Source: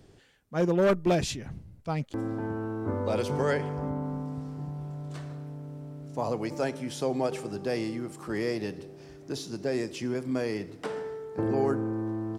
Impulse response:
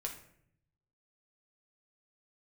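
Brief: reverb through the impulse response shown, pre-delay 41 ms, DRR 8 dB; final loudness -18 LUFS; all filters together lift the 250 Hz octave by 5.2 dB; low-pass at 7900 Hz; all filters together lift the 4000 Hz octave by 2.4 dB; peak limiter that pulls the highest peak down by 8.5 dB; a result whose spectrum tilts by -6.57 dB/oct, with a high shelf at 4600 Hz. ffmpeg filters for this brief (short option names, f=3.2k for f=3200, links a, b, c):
-filter_complex "[0:a]lowpass=7.9k,equalizer=f=250:t=o:g=7,equalizer=f=4k:t=o:g=5,highshelf=f=4.6k:g=-3,alimiter=limit=-20.5dB:level=0:latency=1,asplit=2[a][b];[1:a]atrim=start_sample=2205,adelay=41[c];[b][c]afir=irnorm=-1:irlink=0,volume=-8dB[d];[a][d]amix=inputs=2:normalize=0,volume=12dB"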